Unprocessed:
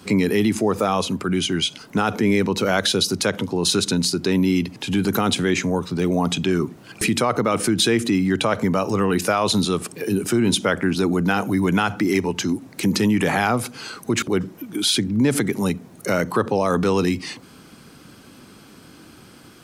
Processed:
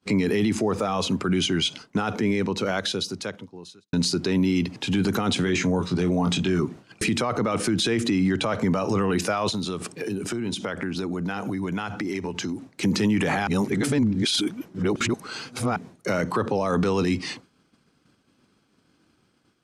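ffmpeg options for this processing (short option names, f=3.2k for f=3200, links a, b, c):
-filter_complex "[0:a]asettb=1/sr,asplit=3[a][b][c];[a]atrim=end=5.444[d];[b]atrim=start=5.44:end=6.6,asetpts=PTS-STARTPTS,afade=t=in:d=0.004:c=qsin,afade=t=out:st=1.156:d=0.004:c=qsin,asplit=2[e][f];[f]adelay=22,volume=-6dB[g];[e][g]amix=inputs=2:normalize=0,atrim=end_sample=51156[h];[c]atrim=start=6.596[i];[d][h]acrossfade=d=0.004:c1=hsin:c2=qsin[j];[j][i]acrossfade=d=0.004:c1=qsin:c2=hsin,asettb=1/sr,asplit=3[k][l][m];[k]atrim=end=9.494[n];[l]atrim=start=9.49:end=12.83,asetpts=PTS-STARTPTS,afade=t=in:d=0.004:c=qsin,afade=t=out:st=3.336:d=0.004:c=qsin,acompressor=threshold=-25dB:ratio=6:attack=3.2:release=140:knee=1:detection=peak[o];[m]atrim=start=12.826[p];[n][o]acrossfade=d=0.004:c1=hsin:c2=qsin[q];[q][p]acrossfade=d=0.004:c1=qsin:c2=hsin,asplit=4[r][s][t][u];[r]atrim=end=3.93,asetpts=PTS-STARTPTS,afade=t=out:st=1.67:d=2.26[v];[s]atrim=start=3.93:end=13.472,asetpts=PTS-STARTPTS,afade=t=in:d=0.004:c=hsin[w];[t]atrim=start=13.468:end=15.762,asetpts=PTS-STARTPTS,areverse[x];[u]atrim=start=15.758[y];[v][w]concat=n=2:v=0:a=1[z];[z][x]acrossfade=d=0.004:c1=hsin:c2=hsin[aa];[aa][y]acrossfade=d=0.004:c1=hsin:c2=hsin,lowpass=7.8k,agate=range=-33dB:threshold=-33dB:ratio=3:detection=peak,alimiter=limit=-15dB:level=0:latency=1:release=10"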